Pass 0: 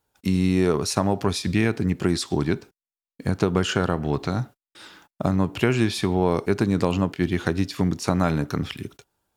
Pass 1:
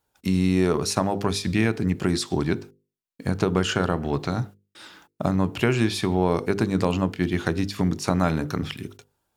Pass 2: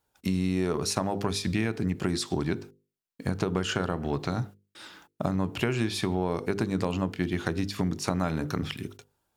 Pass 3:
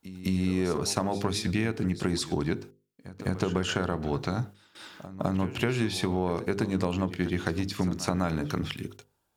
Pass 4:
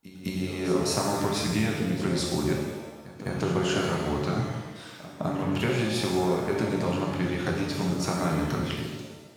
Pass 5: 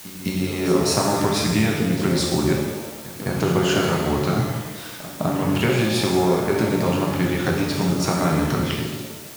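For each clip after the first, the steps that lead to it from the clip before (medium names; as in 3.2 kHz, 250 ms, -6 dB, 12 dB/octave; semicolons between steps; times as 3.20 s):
hum notches 50/100/150/200/250/300/350/400/450/500 Hz
compression 2.5:1, threshold -23 dBFS, peak gain reduction 6 dB; trim -1.5 dB
pre-echo 207 ms -15 dB
pitch-shifted reverb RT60 1.2 s, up +7 st, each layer -8 dB, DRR -1 dB; trim -2 dB
added noise white -47 dBFS; trim +6.5 dB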